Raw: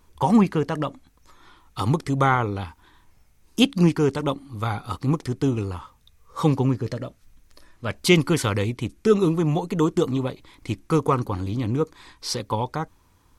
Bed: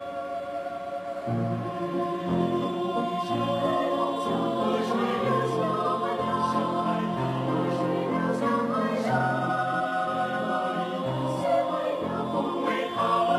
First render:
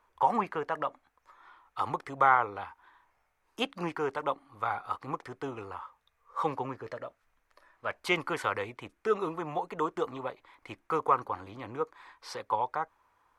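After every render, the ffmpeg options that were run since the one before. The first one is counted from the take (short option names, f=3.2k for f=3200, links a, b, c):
-filter_complex "[0:a]acrossover=split=560 2100:gain=0.0708 1 0.126[a][b][c];[a][b][c]amix=inputs=3:normalize=0"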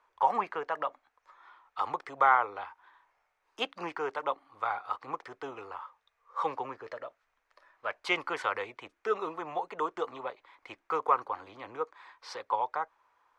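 -filter_complex "[0:a]acrossover=split=370 7300:gain=0.224 1 0.158[a][b][c];[a][b][c]amix=inputs=3:normalize=0"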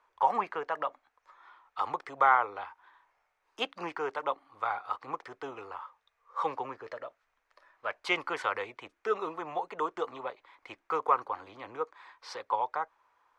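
-af anull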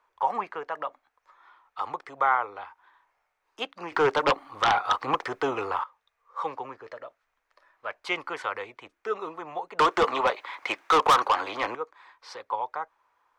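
-filter_complex "[0:a]asettb=1/sr,asplit=3[a][b][c];[a]atrim=end=3.924[d];[b]atrim=start=3.92:end=5.84,asetpts=PTS-STARTPTS,afade=t=in:d=0.004:c=qsin,afade=t=out:st=1.916:d=0.004:c=qsin,aeval=exprs='0.158*sin(PI/2*3.16*val(0)/0.158)':c=same[e];[c]atrim=start=5.836[f];[d][e]acrossfade=d=0.004:c1=hsin:c2=qsin[g];[g][f]acrossfade=d=0.004:c1=qsin:c2=hsin,asettb=1/sr,asplit=3[h][i][j];[h]atrim=end=9.794[k];[i]atrim=start=9.79:end=11.75,asetpts=PTS-STARTPTS,afade=t=in:d=0.004:c=qsin,afade=t=out:st=1.956:d=0.004:c=qsin,asplit=2[l][m];[m]highpass=f=720:p=1,volume=26dB,asoftclip=type=tanh:threshold=-11dB[n];[l][n]amix=inputs=2:normalize=0,lowpass=f=7.4k:p=1,volume=-6dB[o];[j]atrim=start=11.746[p];[k][o]acrossfade=d=0.004:c1=hsin:c2=qsin[q];[q][p]acrossfade=d=0.004:c1=qsin:c2=hsin"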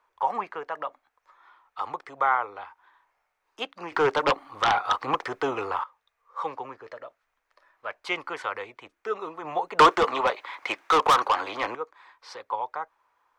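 -filter_complex "[0:a]asplit=3[a][b][c];[a]afade=t=out:st=9.43:d=0.02[d];[b]acontrast=52,afade=t=in:st=9.43:d=0.02,afade=t=out:st=9.94:d=0.02[e];[c]afade=t=in:st=9.94:d=0.02[f];[d][e][f]amix=inputs=3:normalize=0"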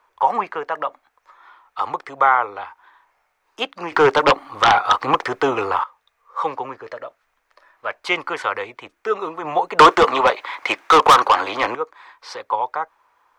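-af "volume=8.5dB,alimiter=limit=-3dB:level=0:latency=1"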